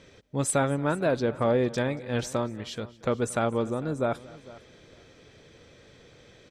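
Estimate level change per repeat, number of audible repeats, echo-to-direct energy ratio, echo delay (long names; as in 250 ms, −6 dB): repeats not evenly spaced, 3, −18.0 dB, 230 ms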